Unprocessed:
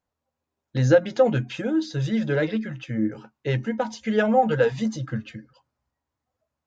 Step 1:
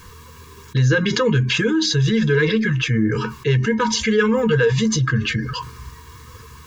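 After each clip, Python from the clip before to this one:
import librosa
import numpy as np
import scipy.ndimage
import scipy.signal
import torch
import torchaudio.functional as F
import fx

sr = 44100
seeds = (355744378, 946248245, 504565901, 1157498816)

y = scipy.signal.sosfilt(scipy.signal.ellip(3, 1.0, 40, [460.0, 920.0], 'bandstop', fs=sr, output='sos'), x)
y = y + 0.62 * np.pad(y, (int(1.8 * sr / 1000.0), 0))[:len(y)]
y = fx.env_flatten(y, sr, amount_pct=70)
y = F.gain(torch.from_numpy(y), 2.0).numpy()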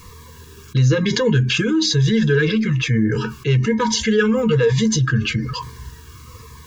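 y = fx.notch_cascade(x, sr, direction='falling', hz=1.1)
y = F.gain(torch.from_numpy(y), 1.5).numpy()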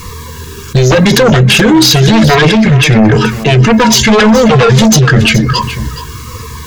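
y = fx.fold_sine(x, sr, drive_db=10, ceiling_db=-5.0)
y = y + 10.0 ** (-13.0 / 20.0) * np.pad(y, (int(422 * sr / 1000.0), 0))[:len(y)]
y = F.gain(torch.from_numpy(y), 2.0).numpy()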